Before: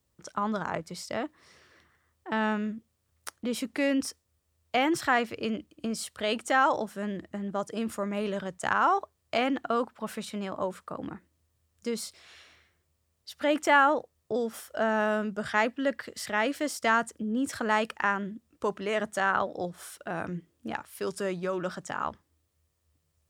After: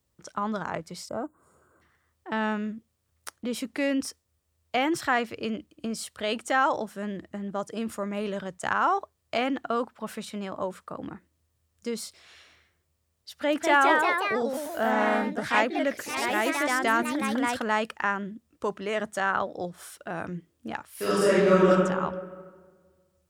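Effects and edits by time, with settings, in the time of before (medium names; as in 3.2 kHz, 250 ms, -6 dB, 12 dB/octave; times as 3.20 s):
1.09–1.82 s: time-frequency box 1.6–6.7 kHz -23 dB
13.31–17.99 s: ever faster or slower copies 214 ms, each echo +2 st, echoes 3
20.95–21.69 s: reverb throw, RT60 1.6 s, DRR -11.5 dB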